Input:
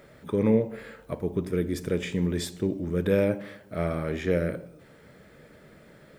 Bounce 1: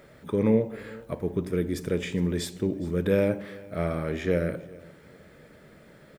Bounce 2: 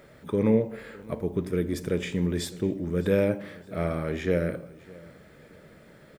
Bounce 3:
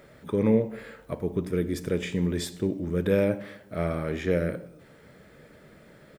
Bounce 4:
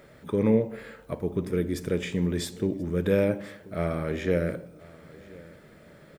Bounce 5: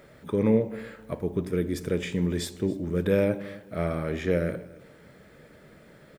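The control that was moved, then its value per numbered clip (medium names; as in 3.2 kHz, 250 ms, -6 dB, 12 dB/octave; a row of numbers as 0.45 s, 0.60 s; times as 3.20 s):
feedback delay, time: 412 ms, 609 ms, 96 ms, 1033 ms, 275 ms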